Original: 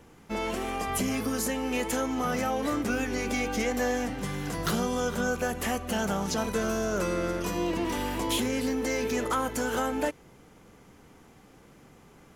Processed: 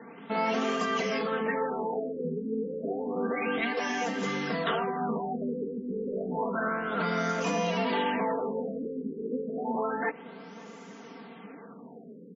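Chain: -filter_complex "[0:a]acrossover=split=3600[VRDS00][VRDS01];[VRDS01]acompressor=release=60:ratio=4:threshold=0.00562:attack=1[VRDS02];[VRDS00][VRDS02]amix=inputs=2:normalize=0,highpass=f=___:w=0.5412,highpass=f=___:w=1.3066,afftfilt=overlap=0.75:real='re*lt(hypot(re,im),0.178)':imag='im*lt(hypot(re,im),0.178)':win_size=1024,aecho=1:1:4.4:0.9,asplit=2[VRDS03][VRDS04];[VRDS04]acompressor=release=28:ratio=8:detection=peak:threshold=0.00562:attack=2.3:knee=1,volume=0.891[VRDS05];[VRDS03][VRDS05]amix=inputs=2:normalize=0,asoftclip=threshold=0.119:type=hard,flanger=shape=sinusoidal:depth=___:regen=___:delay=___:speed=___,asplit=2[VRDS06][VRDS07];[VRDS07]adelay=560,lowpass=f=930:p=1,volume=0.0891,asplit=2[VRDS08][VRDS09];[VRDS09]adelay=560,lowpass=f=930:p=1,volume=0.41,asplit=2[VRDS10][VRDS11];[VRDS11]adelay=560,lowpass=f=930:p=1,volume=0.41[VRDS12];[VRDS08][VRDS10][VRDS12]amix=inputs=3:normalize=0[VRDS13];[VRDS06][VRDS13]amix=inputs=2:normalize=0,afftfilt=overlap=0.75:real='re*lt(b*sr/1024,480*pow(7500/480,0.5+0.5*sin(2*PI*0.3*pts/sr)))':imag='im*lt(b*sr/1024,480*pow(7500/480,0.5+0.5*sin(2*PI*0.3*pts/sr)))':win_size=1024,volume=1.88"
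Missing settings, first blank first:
180, 180, 5.1, 74, 0.5, 1.1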